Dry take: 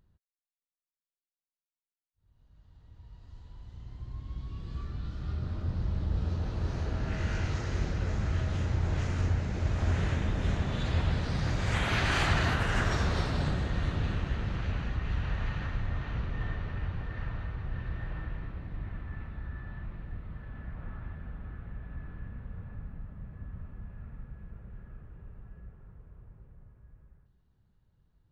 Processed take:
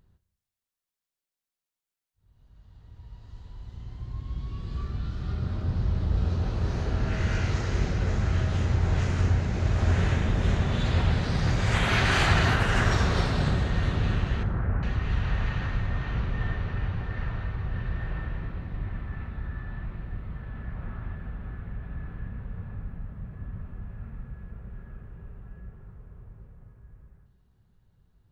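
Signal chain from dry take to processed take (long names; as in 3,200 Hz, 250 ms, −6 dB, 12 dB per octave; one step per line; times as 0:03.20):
0:14.43–0:14.83: inverse Chebyshev low-pass filter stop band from 5,400 Hz, stop band 60 dB
coupled-rooms reverb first 0.8 s, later 2.1 s, from −23 dB, DRR 10 dB
level +4.5 dB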